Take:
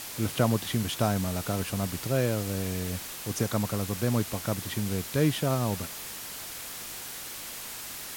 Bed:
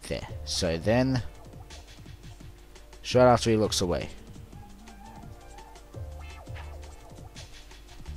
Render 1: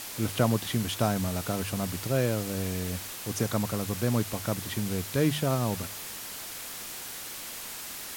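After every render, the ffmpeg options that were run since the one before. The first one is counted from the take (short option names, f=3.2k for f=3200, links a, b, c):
-af "bandreject=f=50:t=h:w=4,bandreject=f=100:t=h:w=4,bandreject=f=150:t=h:w=4"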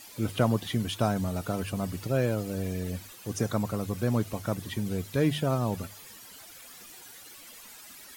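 -af "afftdn=nr=13:nf=-40"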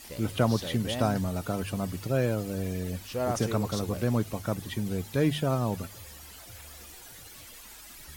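-filter_complex "[1:a]volume=-11dB[a];[0:a][a]amix=inputs=2:normalize=0"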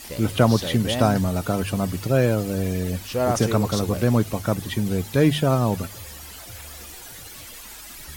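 -af "volume=7.5dB"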